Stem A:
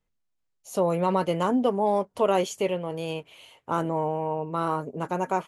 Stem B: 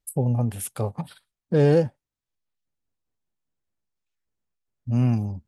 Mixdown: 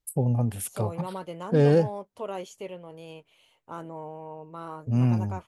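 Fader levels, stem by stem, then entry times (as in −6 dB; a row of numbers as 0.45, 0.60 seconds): −12.0, −1.5 decibels; 0.00, 0.00 seconds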